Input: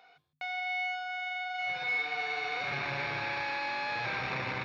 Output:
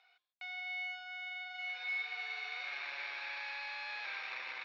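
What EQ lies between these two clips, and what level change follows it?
band-pass 350–3200 Hz; differentiator; +5.0 dB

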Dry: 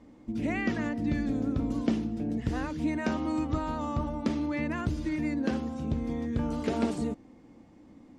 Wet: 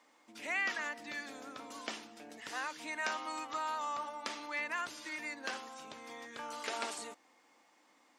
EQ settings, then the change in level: Chebyshev high-pass 1.1 kHz, order 2; treble shelf 4.3 kHz +6.5 dB; +1.0 dB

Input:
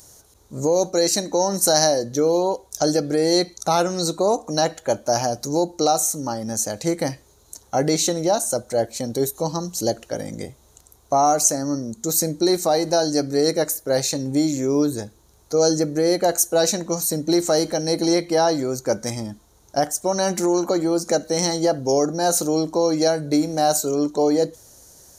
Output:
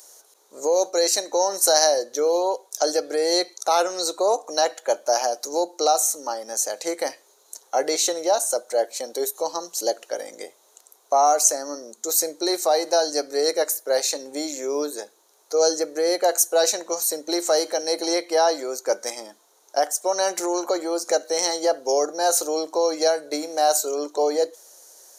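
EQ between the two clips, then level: high-pass 420 Hz 24 dB/octave; 0.0 dB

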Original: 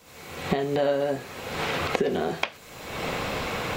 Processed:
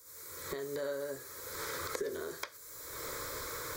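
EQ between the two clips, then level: pre-emphasis filter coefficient 0.8; static phaser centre 750 Hz, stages 6; +2.5 dB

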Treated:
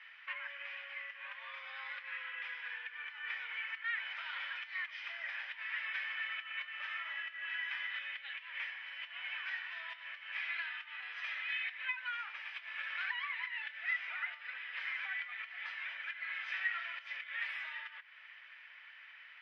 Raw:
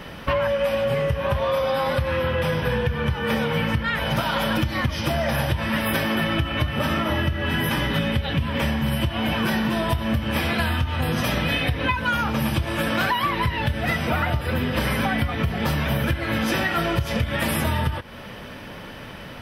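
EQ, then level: ladder high-pass 1.8 kHz, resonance 55%; tape spacing loss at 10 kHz 44 dB; +3.0 dB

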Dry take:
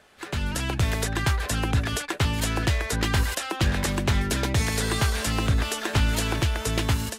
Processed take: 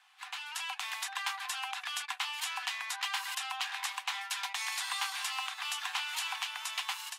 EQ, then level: rippled Chebyshev high-pass 740 Hz, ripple 6 dB; -3.0 dB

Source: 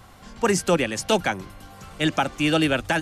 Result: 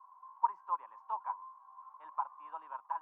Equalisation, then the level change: Butterworth band-pass 1 kHz, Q 7.7; +3.0 dB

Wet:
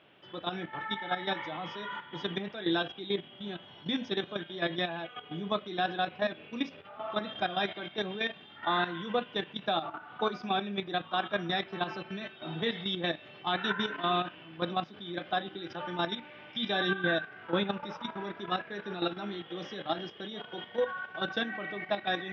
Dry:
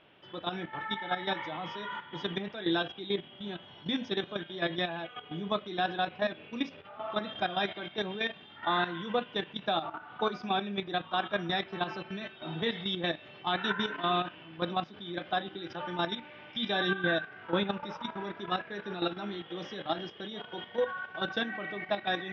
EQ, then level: high-pass 84 Hz; band-stop 930 Hz, Q 27; 0.0 dB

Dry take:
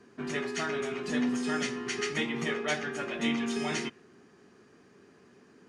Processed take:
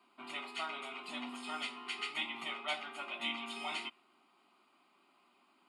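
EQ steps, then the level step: Bessel high-pass 480 Hz, order 4; static phaser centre 1.7 kHz, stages 6; -1.0 dB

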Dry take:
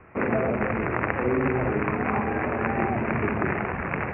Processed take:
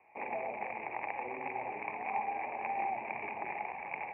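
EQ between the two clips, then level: two resonant band-passes 1.4 kHz, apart 1.5 oct; distance through air 260 m; 0.0 dB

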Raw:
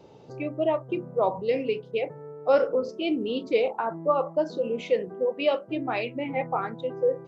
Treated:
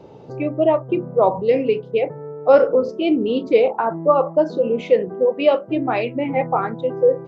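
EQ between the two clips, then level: treble shelf 2.5 kHz -10 dB; +9.0 dB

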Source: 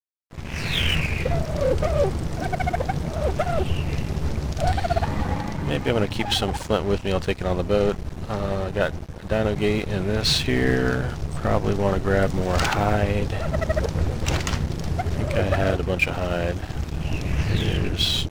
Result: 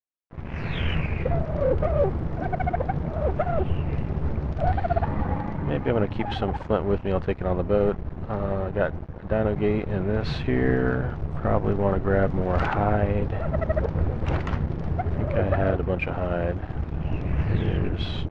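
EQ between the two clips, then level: low-pass 1.6 kHz 12 dB/octave; -1.0 dB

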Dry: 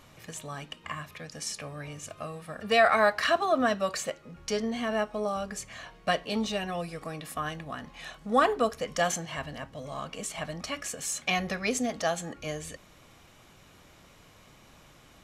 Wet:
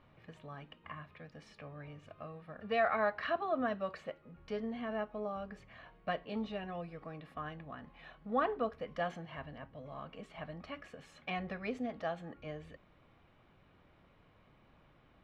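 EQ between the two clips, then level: distance through air 400 m; -7.5 dB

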